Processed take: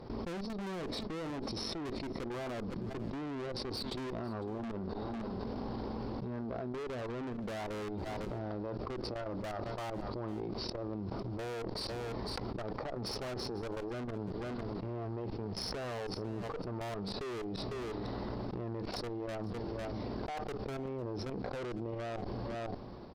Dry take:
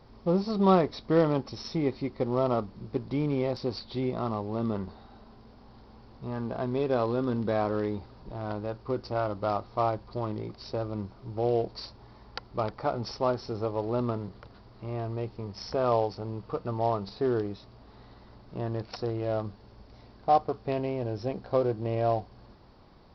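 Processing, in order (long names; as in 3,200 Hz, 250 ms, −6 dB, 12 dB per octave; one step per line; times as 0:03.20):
downward expander −41 dBFS
parametric band 340 Hz +9 dB 2.4 octaves
output level in coarse steps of 22 dB
brickwall limiter −15.5 dBFS, peak gain reduction 5 dB
shaped tremolo saw down 0.54 Hz, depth 70%
tube saturation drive 42 dB, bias 0.55
on a send: single-tap delay 502 ms −24 dB
on the sum: envelope flattener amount 100%
level +3 dB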